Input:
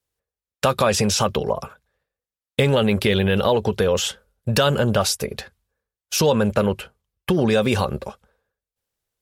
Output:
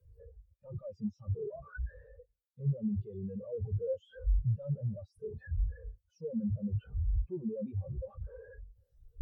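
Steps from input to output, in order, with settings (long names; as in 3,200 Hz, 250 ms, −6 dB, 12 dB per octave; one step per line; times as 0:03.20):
sign of each sample alone
every bin expanded away from the loudest bin 4 to 1
level +1 dB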